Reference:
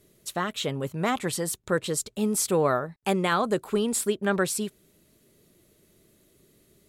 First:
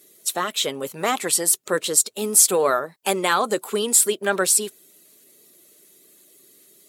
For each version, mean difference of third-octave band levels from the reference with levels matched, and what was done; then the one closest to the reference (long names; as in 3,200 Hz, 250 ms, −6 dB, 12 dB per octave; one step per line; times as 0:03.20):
5.0 dB: spectral magnitudes quantised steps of 15 dB
high-pass filter 330 Hz 12 dB per octave
high-shelf EQ 4,700 Hz +11.5 dB
level +4.5 dB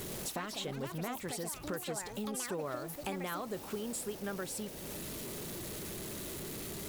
12.0 dB: converter with a step at zero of −37.5 dBFS
downward compressor 4 to 1, threshold −41 dBFS, peak gain reduction 18.5 dB
delay with pitch and tempo change per echo 103 ms, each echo +6 semitones, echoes 2, each echo −6 dB
level +1 dB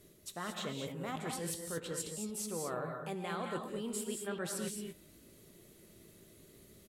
9.0 dB: double-tracking delay 18 ms −12.5 dB
reversed playback
downward compressor 6 to 1, threshold −39 dBFS, peak gain reduction 18.5 dB
reversed playback
reverb whose tail is shaped and stops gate 250 ms rising, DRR 2.5 dB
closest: first